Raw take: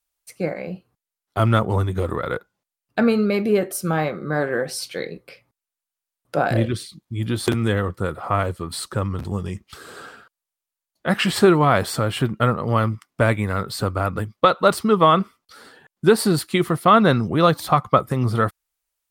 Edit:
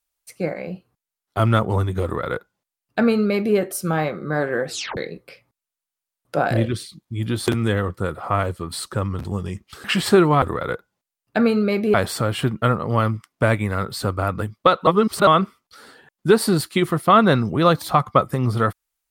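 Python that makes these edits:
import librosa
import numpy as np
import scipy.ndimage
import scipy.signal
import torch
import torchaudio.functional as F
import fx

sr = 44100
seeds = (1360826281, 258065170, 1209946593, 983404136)

y = fx.edit(x, sr, fx.duplicate(start_s=2.04, length_s=1.52, to_s=11.72),
    fx.tape_stop(start_s=4.69, length_s=0.28),
    fx.cut(start_s=9.84, length_s=1.3),
    fx.reverse_span(start_s=14.65, length_s=0.4), tone=tone)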